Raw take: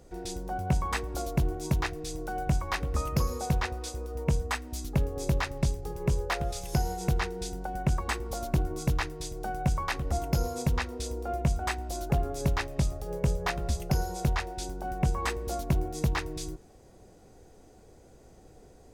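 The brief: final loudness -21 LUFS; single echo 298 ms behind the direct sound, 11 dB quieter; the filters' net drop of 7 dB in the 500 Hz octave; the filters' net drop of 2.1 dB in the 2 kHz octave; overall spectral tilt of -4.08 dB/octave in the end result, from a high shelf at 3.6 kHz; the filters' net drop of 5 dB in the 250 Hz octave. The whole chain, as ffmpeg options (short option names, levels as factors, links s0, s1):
-af "equalizer=f=250:t=o:g=-7.5,equalizer=f=500:t=o:g=-7,equalizer=f=2000:t=o:g=-4,highshelf=f=3600:g=7,aecho=1:1:298:0.282,volume=3.55"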